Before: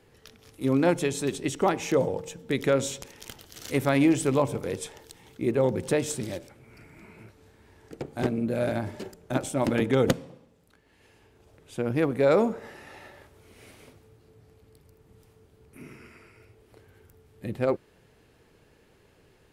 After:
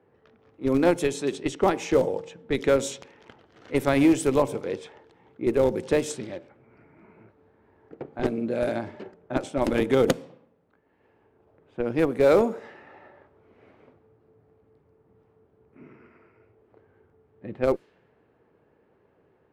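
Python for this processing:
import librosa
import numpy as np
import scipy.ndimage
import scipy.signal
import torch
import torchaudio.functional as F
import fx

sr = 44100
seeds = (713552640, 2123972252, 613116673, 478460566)

p1 = fx.highpass(x, sr, hz=240.0, slope=6)
p2 = fx.schmitt(p1, sr, flips_db=-19.5)
p3 = p1 + F.gain(torch.from_numpy(p2), -4.0).numpy()
p4 = fx.dynamic_eq(p3, sr, hz=380.0, q=1.0, threshold_db=-34.0, ratio=4.0, max_db=4)
y = fx.env_lowpass(p4, sr, base_hz=1200.0, full_db=-19.5)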